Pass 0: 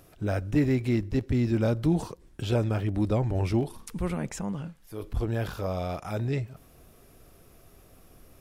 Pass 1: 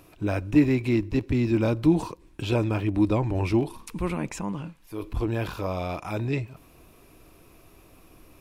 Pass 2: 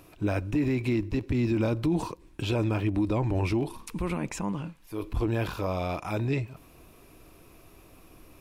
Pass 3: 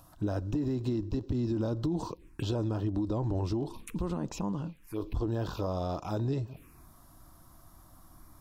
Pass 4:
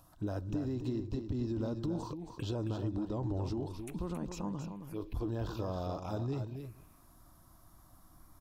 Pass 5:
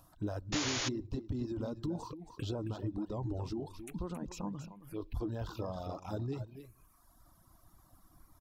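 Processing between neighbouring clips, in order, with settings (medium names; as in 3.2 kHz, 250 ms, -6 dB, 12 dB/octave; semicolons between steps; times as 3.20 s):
graphic EQ with 31 bands 315 Hz +8 dB, 1 kHz +9 dB, 2.5 kHz +9 dB, 4 kHz +3 dB
peak limiter -18.5 dBFS, peak gain reduction 10 dB
compression, threshold -27 dBFS, peak gain reduction 5.5 dB; touch-sensitive phaser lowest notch 350 Hz, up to 2.3 kHz, full sweep at -30.5 dBFS
delay 272 ms -8 dB; trim -5 dB
reverb removal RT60 1.2 s; painted sound noise, 0.52–0.89 s, 260–7100 Hz -36 dBFS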